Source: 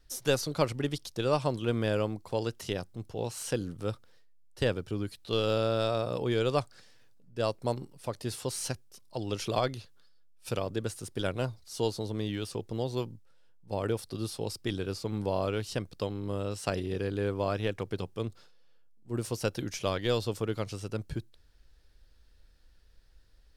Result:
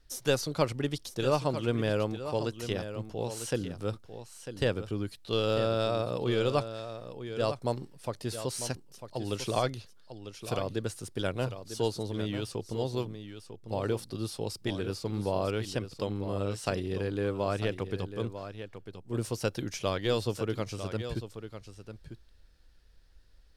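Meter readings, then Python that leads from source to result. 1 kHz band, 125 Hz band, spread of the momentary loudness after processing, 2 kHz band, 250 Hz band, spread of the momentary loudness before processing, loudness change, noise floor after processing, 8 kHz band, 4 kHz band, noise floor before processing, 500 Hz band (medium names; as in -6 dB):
+0.5 dB, +0.5 dB, 14 LU, +0.5 dB, +0.5 dB, 8 LU, 0.0 dB, -57 dBFS, -0.5 dB, 0.0 dB, -59 dBFS, +0.5 dB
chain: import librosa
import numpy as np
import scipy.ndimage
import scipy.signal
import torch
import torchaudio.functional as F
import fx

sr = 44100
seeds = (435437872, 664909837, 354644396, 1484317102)

p1 = fx.high_shelf(x, sr, hz=12000.0, db=-3.5)
y = p1 + fx.echo_single(p1, sr, ms=948, db=-10.5, dry=0)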